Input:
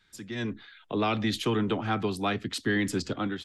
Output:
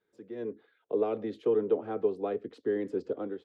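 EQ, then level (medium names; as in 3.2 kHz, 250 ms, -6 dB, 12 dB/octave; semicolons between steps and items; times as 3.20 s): band-pass filter 460 Hz, Q 5.1; +7.5 dB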